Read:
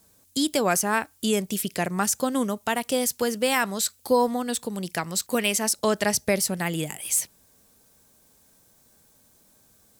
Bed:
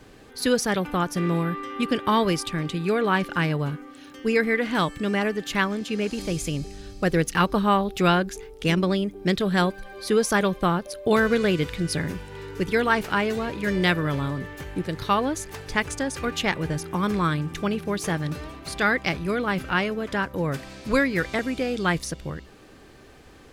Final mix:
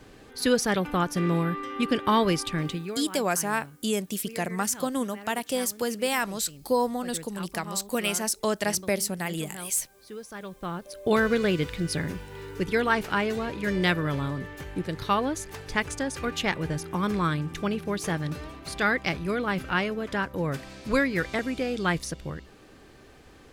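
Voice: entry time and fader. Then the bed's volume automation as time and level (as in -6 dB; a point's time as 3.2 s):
2.60 s, -3.5 dB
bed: 2.7 s -1 dB
3.07 s -19.5 dB
10.33 s -19.5 dB
11.09 s -2.5 dB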